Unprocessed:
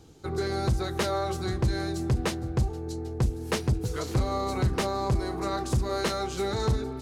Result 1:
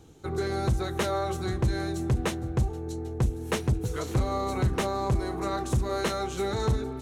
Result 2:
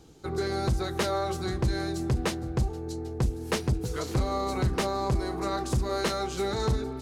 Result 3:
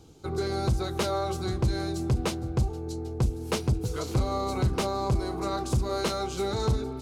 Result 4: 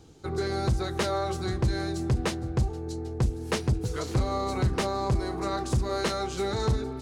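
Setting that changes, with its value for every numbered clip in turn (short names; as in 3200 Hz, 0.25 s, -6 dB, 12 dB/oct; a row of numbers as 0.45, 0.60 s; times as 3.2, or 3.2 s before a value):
bell, frequency: 4800, 100, 1800, 13000 Hz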